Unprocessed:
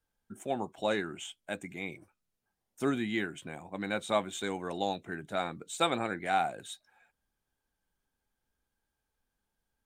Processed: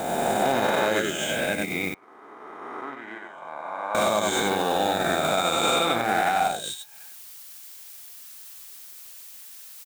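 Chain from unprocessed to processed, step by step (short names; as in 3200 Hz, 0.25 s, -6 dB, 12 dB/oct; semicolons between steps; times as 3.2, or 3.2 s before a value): spectral swells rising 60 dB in 2.77 s; in parallel at -4 dB: companded quantiser 4-bit; on the sum: added noise blue -48 dBFS; on a send: echo 94 ms -4.5 dB; on the sum: transient shaper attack +1 dB, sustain -7 dB; 1.94–3.95 band-pass 920 Hz, Q 5; limiter -15.5 dBFS, peak gain reduction 10 dB; gain +3 dB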